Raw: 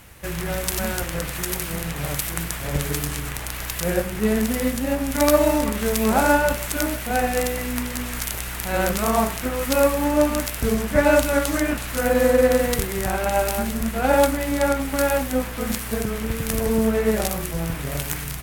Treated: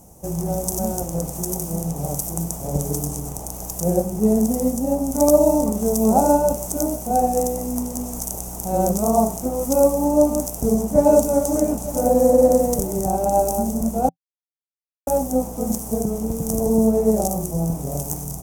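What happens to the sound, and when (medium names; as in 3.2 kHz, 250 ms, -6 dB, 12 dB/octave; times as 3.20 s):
10.56–11.30 s: echo throw 450 ms, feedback 70%, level -12 dB
14.09–15.07 s: mute
whole clip: FFT filter 120 Hz 0 dB, 170 Hz +9 dB, 260 Hz +5 dB, 550 Hz +5 dB, 770 Hz +8 dB, 1.7 kHz -24 dB, 4.2 kHz -16 dB, 6 kHz +6 dB, 13 kHz +2 dB; trim -2.5 dB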